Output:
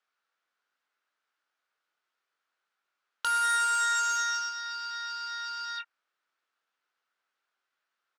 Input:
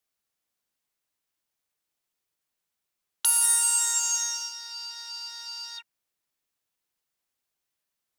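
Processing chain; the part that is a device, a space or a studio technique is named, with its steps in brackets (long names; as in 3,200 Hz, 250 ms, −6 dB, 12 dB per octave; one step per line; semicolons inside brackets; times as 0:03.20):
intercom (band-pass filter 380–3,900 Hz; parametric band 1,400 Hz +12 dB 0.59 octaves; soft clipping −22.5 dBFS, distortion −20 dB; double-tracking delay 22 ms −8 dB)
level +2 dB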